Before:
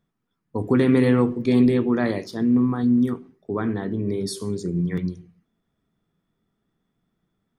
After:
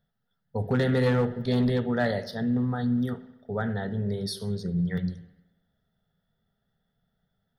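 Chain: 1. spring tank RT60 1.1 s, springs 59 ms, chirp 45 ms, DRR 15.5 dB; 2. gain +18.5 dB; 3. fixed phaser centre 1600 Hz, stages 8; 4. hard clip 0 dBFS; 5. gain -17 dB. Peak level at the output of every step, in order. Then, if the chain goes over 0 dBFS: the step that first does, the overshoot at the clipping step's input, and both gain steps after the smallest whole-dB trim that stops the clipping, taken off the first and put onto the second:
-7.5, +11.0, +7.5, 0.0, -17.0 dBFS; step 2, 7.5 dB; step 2 +10.5 dB, step 5 -9 dB

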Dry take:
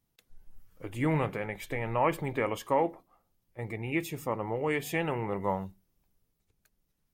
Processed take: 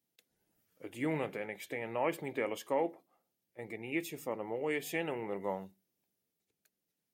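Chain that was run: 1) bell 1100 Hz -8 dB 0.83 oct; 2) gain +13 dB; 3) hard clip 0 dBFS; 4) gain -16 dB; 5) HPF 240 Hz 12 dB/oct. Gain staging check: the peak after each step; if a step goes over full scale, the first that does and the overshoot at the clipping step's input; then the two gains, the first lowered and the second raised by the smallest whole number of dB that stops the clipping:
-16.0, -3.0, -3.0, -19.0, -20.0 dBFS; no overload

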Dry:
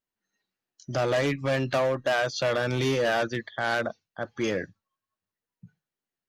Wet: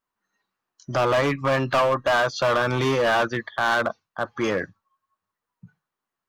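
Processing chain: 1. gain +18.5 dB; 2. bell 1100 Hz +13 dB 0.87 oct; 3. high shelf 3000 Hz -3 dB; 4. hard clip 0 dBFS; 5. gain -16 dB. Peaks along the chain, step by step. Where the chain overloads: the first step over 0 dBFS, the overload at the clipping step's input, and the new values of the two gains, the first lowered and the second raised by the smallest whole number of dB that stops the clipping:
+1.0, +9.5, +9.0, 0.0, -16.0 dBFS; step 1, 9.0 dB; step 1 +9.5 dB, step 5 -7 dB

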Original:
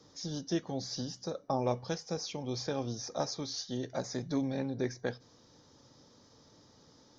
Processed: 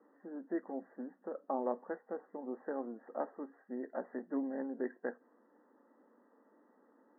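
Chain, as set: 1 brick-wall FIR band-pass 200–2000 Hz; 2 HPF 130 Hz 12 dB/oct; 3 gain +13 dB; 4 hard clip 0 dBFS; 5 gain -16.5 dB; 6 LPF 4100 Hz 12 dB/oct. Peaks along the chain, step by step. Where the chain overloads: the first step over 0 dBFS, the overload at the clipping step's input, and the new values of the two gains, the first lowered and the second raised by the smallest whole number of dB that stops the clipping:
-18.0, -18.0, -5.0, -5.0, -21.5, -21.5 dBFS; no overload

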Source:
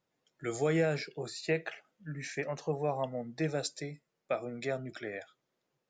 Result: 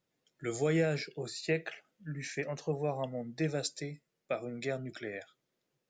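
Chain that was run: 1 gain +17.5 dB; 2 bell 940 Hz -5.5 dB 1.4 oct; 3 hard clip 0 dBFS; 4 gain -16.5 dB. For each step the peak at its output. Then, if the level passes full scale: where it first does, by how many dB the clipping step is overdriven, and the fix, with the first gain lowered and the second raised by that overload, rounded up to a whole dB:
-1.5, -2.5, -2.5, -19.0 dBFS; no overload

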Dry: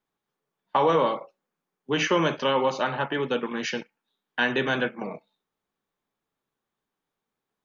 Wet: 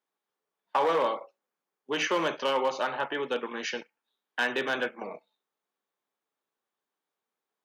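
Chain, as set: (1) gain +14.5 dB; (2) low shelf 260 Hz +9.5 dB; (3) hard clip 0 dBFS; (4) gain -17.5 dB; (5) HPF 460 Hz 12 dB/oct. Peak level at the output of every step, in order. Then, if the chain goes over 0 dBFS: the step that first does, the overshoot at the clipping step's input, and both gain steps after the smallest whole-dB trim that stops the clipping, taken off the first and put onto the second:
+3.5, +5.5, 0.0, -17.5, -14.5 dBFS; step 1, 5.5 dB; step 1 +8.5 dB, step 4 -11.5 dB

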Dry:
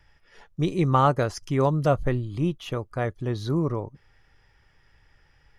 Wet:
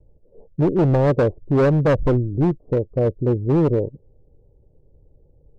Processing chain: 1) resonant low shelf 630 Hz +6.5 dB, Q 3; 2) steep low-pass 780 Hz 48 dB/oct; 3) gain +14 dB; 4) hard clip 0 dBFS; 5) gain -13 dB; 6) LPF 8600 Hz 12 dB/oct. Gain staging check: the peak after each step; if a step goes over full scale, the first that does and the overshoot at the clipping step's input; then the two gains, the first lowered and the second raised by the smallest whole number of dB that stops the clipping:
-3.5, -4.0, +10.0, 0.0, -13.0, -13.0 dBFS; step 3, 10.0 dB; step 3 +4 dB, step 5 -3 dB

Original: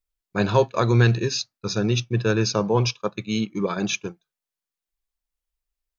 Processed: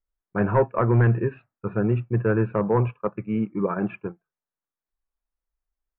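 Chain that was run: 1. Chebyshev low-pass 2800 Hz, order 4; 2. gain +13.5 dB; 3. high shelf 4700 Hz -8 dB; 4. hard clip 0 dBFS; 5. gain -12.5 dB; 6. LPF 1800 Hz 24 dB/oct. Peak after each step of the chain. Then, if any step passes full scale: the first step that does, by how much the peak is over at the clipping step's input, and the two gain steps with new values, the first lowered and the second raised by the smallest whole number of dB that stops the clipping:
-6.0, +7.5, +7.5, 0.0, -12.5, -11.5 dBFS; step 2, 7.5 dB; step 2 +5.5 dB, step 5 -4.5 dB

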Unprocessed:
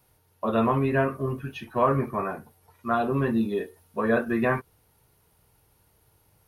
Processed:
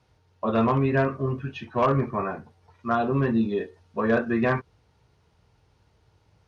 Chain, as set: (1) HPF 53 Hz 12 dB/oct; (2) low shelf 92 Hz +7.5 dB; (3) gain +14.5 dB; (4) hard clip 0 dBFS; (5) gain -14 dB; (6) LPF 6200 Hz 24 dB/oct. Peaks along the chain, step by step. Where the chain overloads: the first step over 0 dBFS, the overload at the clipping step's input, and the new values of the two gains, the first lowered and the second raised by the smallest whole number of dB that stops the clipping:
-9.0, -9.0, +5.5, 0.0, -14.0, -13.5 dBFS; step 3, 5.5 dB; step 3 +8.5 dB, step 5 -8 dB

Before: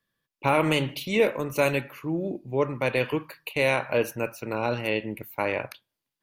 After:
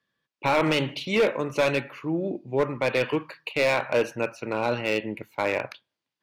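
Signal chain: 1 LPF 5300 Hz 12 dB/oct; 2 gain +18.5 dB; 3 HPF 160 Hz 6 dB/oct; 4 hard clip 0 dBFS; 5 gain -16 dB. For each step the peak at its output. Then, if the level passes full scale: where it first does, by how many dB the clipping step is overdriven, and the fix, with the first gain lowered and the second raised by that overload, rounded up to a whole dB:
-9.5, +9.0, +8.5, 0.0, -16.0 dBFS; step 2, 8.5 dB; step 2 +9.5 dB, step 5 -7 dB

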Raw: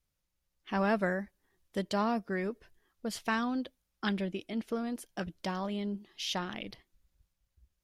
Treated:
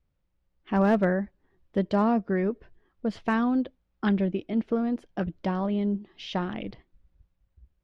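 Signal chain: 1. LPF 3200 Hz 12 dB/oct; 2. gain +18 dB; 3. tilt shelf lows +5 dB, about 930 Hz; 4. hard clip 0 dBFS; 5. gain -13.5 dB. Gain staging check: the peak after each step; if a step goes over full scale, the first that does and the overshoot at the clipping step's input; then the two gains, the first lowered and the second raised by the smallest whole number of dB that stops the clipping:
-17.0, +1.0, +3.5, 0.0, -13.5 dBFS; step 2, 3.5 dB; step 2 +14 dB, step 5 -9.5 dB

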